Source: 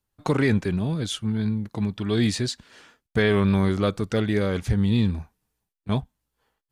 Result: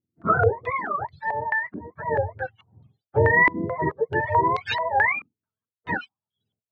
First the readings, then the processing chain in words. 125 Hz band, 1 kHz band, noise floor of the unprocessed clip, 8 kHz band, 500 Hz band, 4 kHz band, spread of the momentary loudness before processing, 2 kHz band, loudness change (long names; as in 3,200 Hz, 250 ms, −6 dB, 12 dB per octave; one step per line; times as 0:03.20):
−7.0 dB, +13.0 dB, −83 dBFS, below −20 dB, +1.5 dB, −7.5 dB, 8 LU, +10.0 dB, +1.0 dB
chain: frequency axis turned over on the octave scale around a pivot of 440 Hz
reverb reduction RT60 1.2 s
low-pass on a step sequencer 4.6 Hz 320–4,100 Hz